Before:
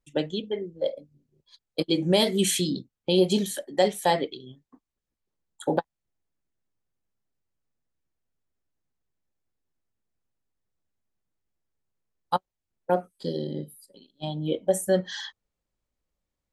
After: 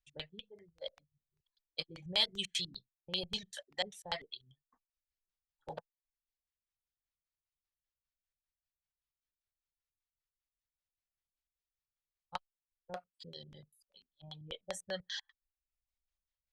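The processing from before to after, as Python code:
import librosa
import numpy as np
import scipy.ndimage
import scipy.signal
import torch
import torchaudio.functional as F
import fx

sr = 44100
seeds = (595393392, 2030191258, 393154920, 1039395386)

y = fx.filter_lfo_lowpass(x, sr, shape='square', hz=5.1, low_hz=350.0, high_hz=4600.0, q=0.95)
y = fx.dereverb_blind(y, sr, rt60_s=0.64)
y = fx.tone_stack(y, sr, knobs='10-0-10')
y = y * librosa.db_to_amplitude(-2.0)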